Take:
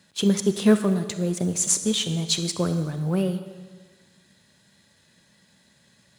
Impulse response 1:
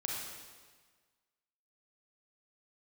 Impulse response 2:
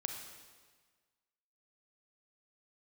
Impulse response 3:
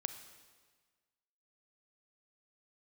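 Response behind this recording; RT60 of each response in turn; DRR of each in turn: 3; 1.5 s, 1.5 s, 1.5 s; -2.5 dB, 3.5 dB, 9.0 dB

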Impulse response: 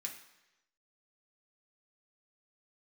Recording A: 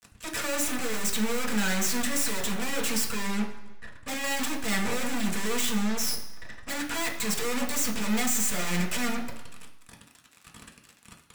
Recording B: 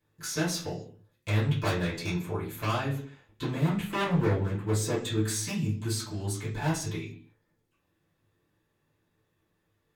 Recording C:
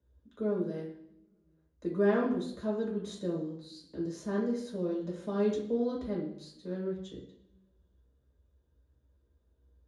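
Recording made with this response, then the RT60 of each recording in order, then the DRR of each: A; 1.0 s, 0.50 s, 0.70 s; -0.5 dB, -13.5 dB, -4.5 dB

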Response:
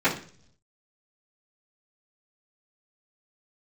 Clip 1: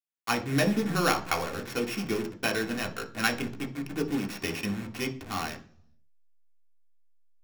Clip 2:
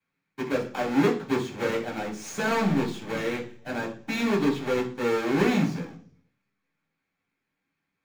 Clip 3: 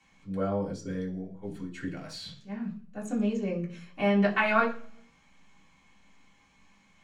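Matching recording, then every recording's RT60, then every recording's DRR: 2; 0.50 s, 0.50 s, 0.50 s; 2.0 dB, -15.0 dB, -7.5 dB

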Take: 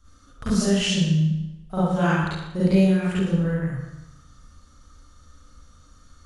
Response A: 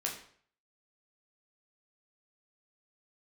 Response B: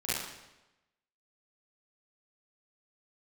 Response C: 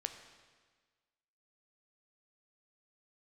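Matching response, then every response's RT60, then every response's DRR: B; 0.55 s, 1.0 s, 1.5 s; -2.0 dB, -11.5 dB, 6.5 dB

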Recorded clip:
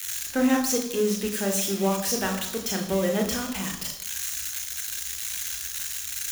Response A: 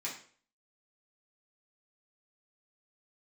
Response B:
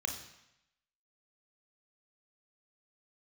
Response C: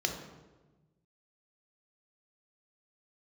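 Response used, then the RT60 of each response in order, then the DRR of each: B; 0.45 s, 0.85 s, 1.2 s; -6.5 dB, 3.5 dB, 2.5 dB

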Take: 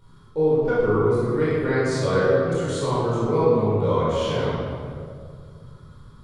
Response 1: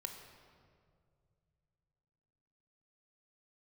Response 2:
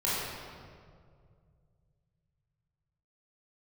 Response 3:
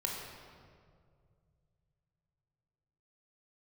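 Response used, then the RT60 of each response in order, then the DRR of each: 2; 2.2 s, 2.1 s, 2.1 s; 4.0 dB, -10.0 dB, -2.0 dB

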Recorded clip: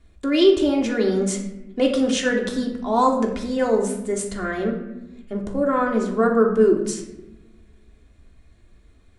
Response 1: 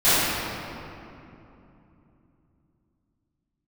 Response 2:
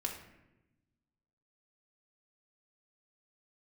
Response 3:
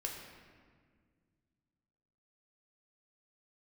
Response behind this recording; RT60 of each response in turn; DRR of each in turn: 2; 2.9 s, 0.95 s, 1.8 s; -20.0 dB, -0.5 dB, 0.0 dB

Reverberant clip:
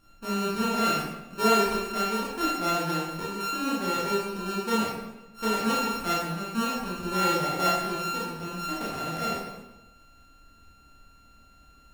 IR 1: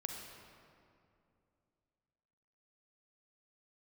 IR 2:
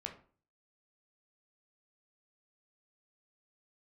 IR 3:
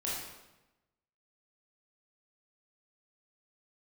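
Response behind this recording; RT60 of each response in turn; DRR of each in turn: 3; 2.6 s, 0.45 s, 1.0 s; 2.0 dB, 2.0 dB, -7.0 dB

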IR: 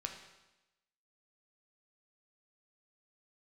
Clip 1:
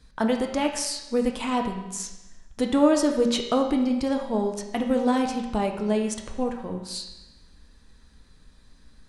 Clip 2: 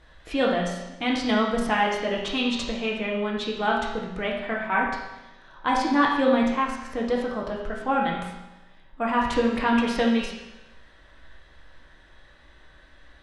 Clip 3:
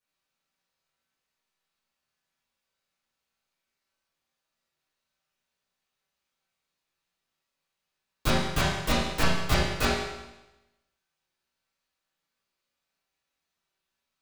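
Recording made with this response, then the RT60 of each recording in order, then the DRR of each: 1; 1.0 s, 1.0 s, 1.0 s; 2.5 dB, -3.0 dB, -12.0 dB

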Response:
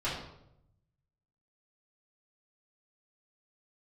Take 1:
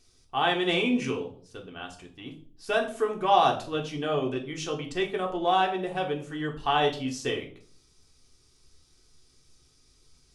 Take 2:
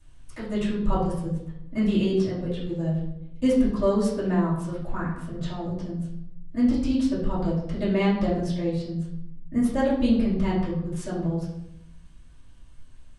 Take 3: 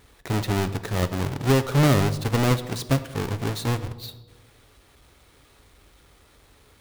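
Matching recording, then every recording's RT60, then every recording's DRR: 2; 0.50 s, 0.80 s, 1.3 s; 0.5 dB, -11.0 dB, 10.5 dB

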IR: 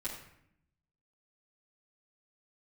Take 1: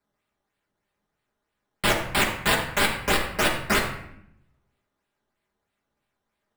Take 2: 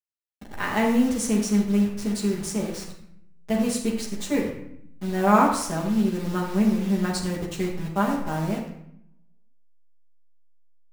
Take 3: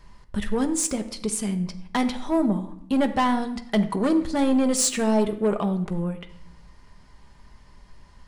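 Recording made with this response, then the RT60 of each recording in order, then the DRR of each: 2; 0.70 s, 0.70 s, 0.70 s; -3.0 dB, -9.5 dB, 6.5 dB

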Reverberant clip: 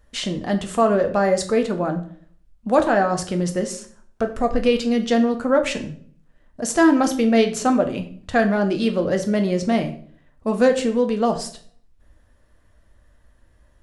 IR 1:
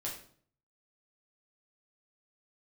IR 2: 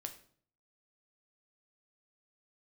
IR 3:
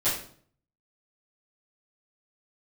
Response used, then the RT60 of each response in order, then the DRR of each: 2; 0.55 s, 0.55 s, 0.55 s; -4.5 dB, 5.5 dB, -14.5 dB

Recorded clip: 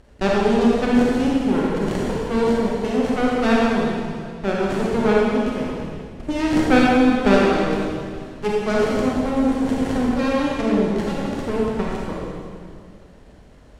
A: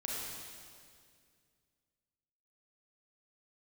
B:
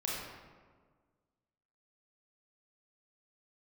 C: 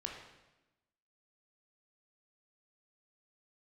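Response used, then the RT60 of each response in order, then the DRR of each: A; 2.1 s, 1.6 s, 1.0 s; -4.5 dB, -5.5 dB, 0.0 dB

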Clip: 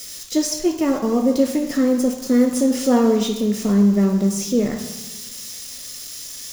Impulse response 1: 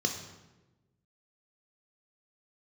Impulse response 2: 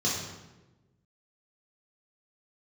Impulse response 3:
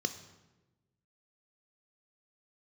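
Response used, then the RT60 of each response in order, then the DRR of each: 1; 1.1 s, 1.1 s, 1.1 s; 3.5 dB, -6.5 dB, 9.0 dB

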